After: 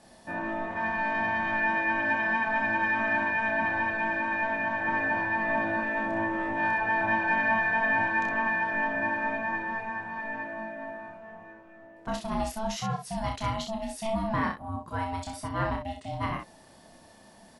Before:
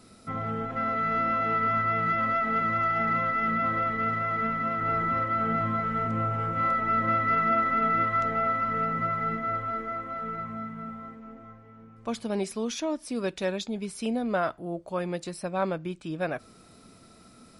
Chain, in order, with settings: ring modulator 440 Hz; early reflections 30 ms -4 dB, 63 ms -6 dB

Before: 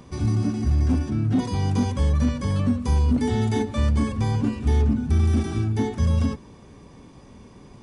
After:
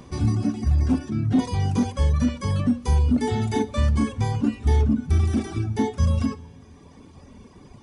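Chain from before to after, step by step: reverb removal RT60 1.4 s; two-slope reverb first 0.26 s, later 4.2 s, from -20 dB, DRR 11.5 dB; gain +2 dB

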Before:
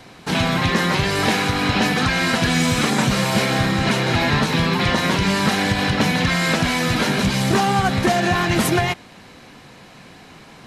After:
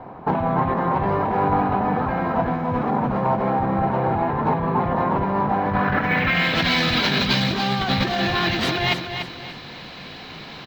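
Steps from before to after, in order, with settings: notches 60/120/180/240/300/360 Hz; negative-ratio compressor -23 dBFS, ratio -1; low-pass sweep 900 Hz -> 4000 Hz, 5.6–6.63; on a send: feedback echo 0.291 s, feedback 34%, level -8 dB; on the sum: decimation joined by straight lines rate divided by 2×

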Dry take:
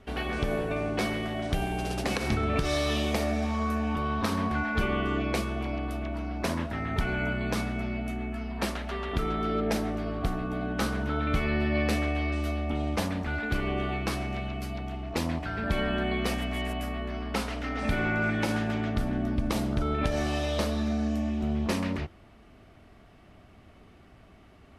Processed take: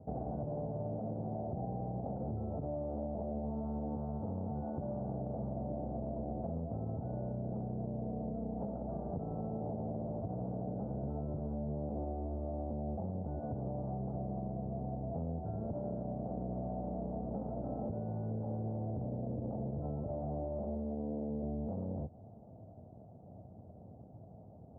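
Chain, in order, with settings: minimum comb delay 1.4 ms; HPF 100 Hz 24 dB/oct; tilt -2 dB/oct; limiter -24.5 dBFS, peak gain reduction 11 dB; steep low-pass 780 Hz 36 dB/oct; compressor, threshold -37 dBFS, peak gain reduction 8.5 dB; gain +1.5 dB

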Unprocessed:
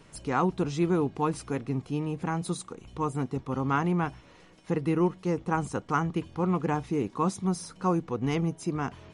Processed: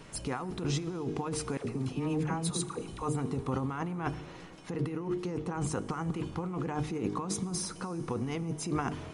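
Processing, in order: de-hum 50.84 Hz, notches 9; negative-ratio compressor -33 dBFS, ratio -1; 1.57–3.03 dispersion lows, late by 78 ms, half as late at 680 Hz; plate-style reverb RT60 4.1 s, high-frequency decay 0.9×, DRR 15.5 dB

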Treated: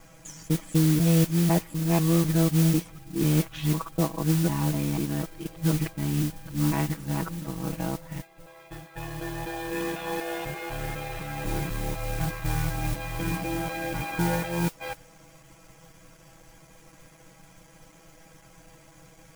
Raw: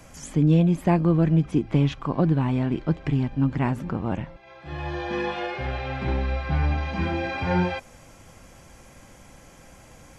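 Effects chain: local time reversal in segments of 0.131 s; granular stretch 1.9×, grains 26 ms; modulation noise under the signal 13 dB; gain -2.5 dB

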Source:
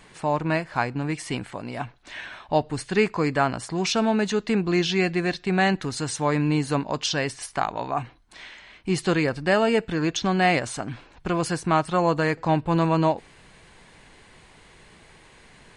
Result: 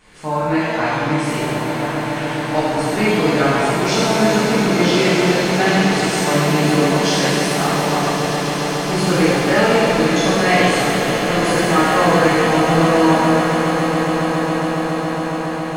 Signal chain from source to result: swelling echo 0.138 s, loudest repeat 8, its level -13 dB; shimmer reverb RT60 2 s, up +7 st, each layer -8 dB, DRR -11 dB; gain -5 dB

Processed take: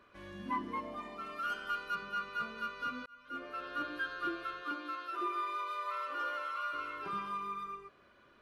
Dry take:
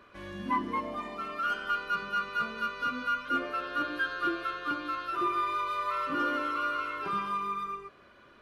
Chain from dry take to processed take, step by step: 1.26–1.95 high shelf 5800 Hz +6.5 dB; 3.06–3.68 fade in; 4.61–6.72 HPF 190 Hz -> 630 Hz 24 dB/oct; gain -6.5 dB

